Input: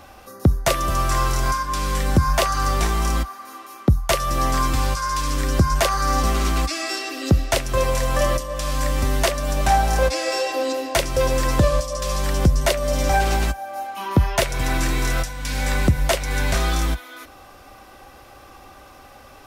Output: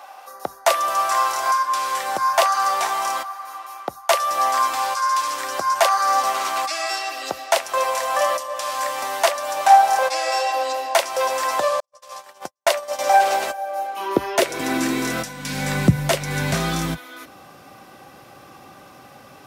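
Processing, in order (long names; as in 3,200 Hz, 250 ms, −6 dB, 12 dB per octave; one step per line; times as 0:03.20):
high-pass filter sweep 780 Hz → 150 Hz, 0:12.91–0:15.83
0:11.80–0:12.99: noise gate −22 dBFS, range −58 dB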